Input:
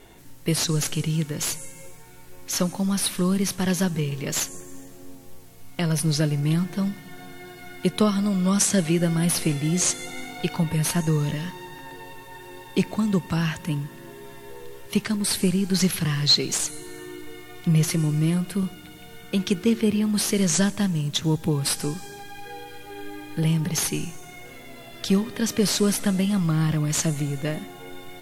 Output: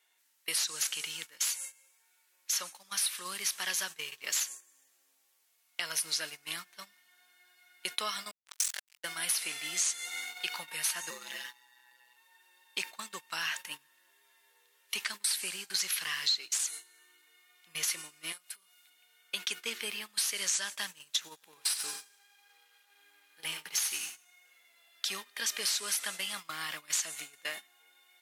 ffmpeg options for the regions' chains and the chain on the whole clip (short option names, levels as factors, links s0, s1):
-filter_complex "[0:a]asettb=1/sr,asplit=3[s0][s1][s2];[s0]atrim=end=8.314[s3];[s1]atrim=start=8.31:end=9.04,asetpts=PTS-STARTPTS,afade=t=in:d=0.004:c=qsin,afade=t=out:st=0.726:d=0.004:c=qsin,highpass=750,tremolo=f=44:d=0.621,acrusher=bits=3:mix=0:aa=0.5[s4];[s2]atrim=start=9.036[s5];[s3][s4]acrossfade=d=0.004:c1=hsin:c2=qsin[s6];[s6][s5]acrossfade=d=0.004:c1=qsin:c2=hsin,asettb=1/sr,asplit=3[s7][s8][s9];[s7]atrim=end=11.104[s10];[s8]atrim=start=11.1:end=12.17,asetpts=PTS-STARTPTS,afade=t=in:d=0.004:c=qsin,afade=t=out:st=1.066:d=0.004:c=qsin,aeval=exprs='val(0)*sin(2*PI*63*n/s)':c=same,aecho=1:1:5.8:0.74,atrim=end_sample=47187[s11];[s9]atrim=start=12.166[s12];[s10][s11]acrossfade=d=0.004:c1=hsin:c2=qsin[s13];[s13][s12]acrossfade=d=0.004:c1=qsin:c2=hsin,asettb=1/sr,asplit=3[s14][s15][s16];[s14]atrim=end=18.324[s17];[s15]atrim=start=18.32:end=18.9,asetpts=PTS-STARTPTS,afade=t=in:d=0.004:c=qsin,afade=t=out:st=0.576:d=0.004:c=qsin,bass=f=250:g=-11,treble=f=4000:g=5,acompressor=threshold=0.0112:ratio=2.5:attack=3.2:release=140:knee=1:detection=peak[s18];[s16]atrim=start=18.896[s19];[s17][s18]acrossfade=d=0.004:c1=hsin:c2=qsin[s20];[s20][s19]acrossfade=d=0.004:c1=qsin:c2=hsin,asettb=1/sr,asplit=3[s21][s22][s23];[s21]atrim=end=21.344[s24];[s22]atrim=start=21.34:end=24.25,asetpts=PTS-STARTPTS,afade=t=in:d=0.004:c=qsin,afade=t=out:st=2.906:d=0.004:c=qsin,aeval=exprs='sgn(val(0))*max(abs(val(0))-0.00596,0)':c=same,aecho=1:1:89|178|267|356|445:0.316|0.149|0.0699|0.0328|0.0154,atrim=end_sample=128331[s25];[s23]atrim=start=24.246[s26];[s24][s25]acrossfade=d=0.004:c1=hsin:c2=qsin[s27];[s27][s26]acrossfade=d=0.004:c1=qsin:c2=hsin,highpass=1500,acompressor=threshold=0.0355:ratio=6,agate=range=0.141:threshold=0.00891:ratio=16:detection=peak,volume=1.12"